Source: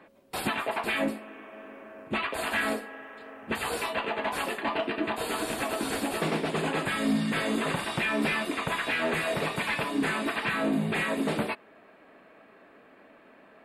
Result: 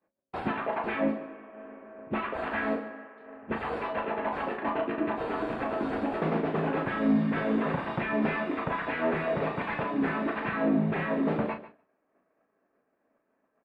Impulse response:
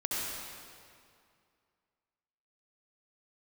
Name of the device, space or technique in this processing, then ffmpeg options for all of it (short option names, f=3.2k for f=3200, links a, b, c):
hearing-loss simulation: -filter_complex "[0:a]asettb=1/sr,asplit=3[a][b][c];[a]atrim=end=2.764[d];[b]atrim=start=2.76:end=3.24,asetpts=PTS-STARTPTS,afade=t=in:d=0.004:c=qsin,afade=t=out:st=0.476:d=0.004:c=qsin,highpass=190[e];[c]atrim=start=3.236[f];[d][e]acrossfade=d=0.004:c1=hsin:c2=qsin[g];[g][f]acrossfade=d=0.004:c1=qsin:c2=hsin,lowpass=1.5k,asplit=2[h][i];[i]adelay=37,volume=-8dB[j];[h][j]amix=inputs=2:normalize=0,aecho=1:1:146|292|438:0.178|0.048|0.013,agate=range=-33dB:threshold=-42dB:ratio=3:detection=peak"